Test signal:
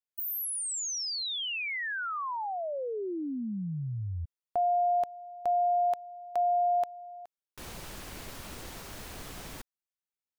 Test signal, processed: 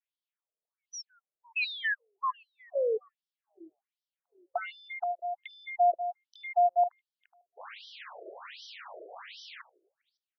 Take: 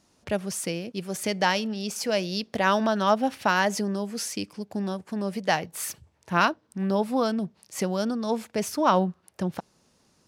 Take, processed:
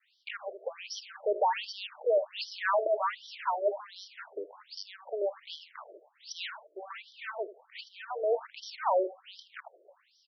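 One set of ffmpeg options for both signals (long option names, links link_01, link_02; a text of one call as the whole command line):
ffmpeg -i in.wav -filter_complex "[0:a]lowpass=9500,adynamicequalizer=threshold=0.0178:dfrequency=650:dqfactor=0.82:tfrequency=650:tqfactor=0.82:attack=5:release=100:ratio=0.375:range=2.5:mode=boostabove:tftype=bell,asplit=2[link_01][link_02];[link_02]acompressor=threshold=-32dB:ratio=6:attack=26:release=245:knee=1:detection=peak,volume=2dB[link_03];[link_01][link_03]amix=inputs=2:normalize=0,asoftclip=type=hard:threshold=-13.5dB,acrossover=split=210|4500[link_04][link_05][link_06];[link_06]adelay=400[link_07];[link_04]adelay=470[link_08];[link_08][link_05][link_07]amix=inputs=3:normalize=0,asoftclip=type=tanh:threshold=-20dB,asplit=2[link_09][link_10];[link_10]aecho=0:1:78|156:0.168|0.0403[link_11];[link_09][link_11]amix=inputs=2:normalize=0,afftfilt=real='re*between(b*sr/1024,460*pow(4300/460,0.5+0.5*sin(2*PI*1.3*pts/sr))/1.41,460*pow(4300/460,0.5+0.5*sin(2*PI*1.3*pts/sr))*1.41)':imag='im*between(b*sr/1024,460*pow(4300/460,0.5+0.5*sin(2*PI*1.3*pts/sr))/1.41,460*pow(4300/460,0.5+0.5*sin(2*PI*1.3*pts/sr))*1.41)':win_size=1024:overlap=0.75" out.wav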